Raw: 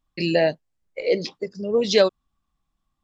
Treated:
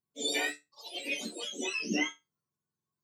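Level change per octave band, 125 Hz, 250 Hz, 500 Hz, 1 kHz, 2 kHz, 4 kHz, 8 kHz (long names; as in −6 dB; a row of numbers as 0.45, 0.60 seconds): −17.5 dB, −10.0 dB, −21.0 dB, −10.5 dB, −2.5 dB, −5.5 dB, can't be measured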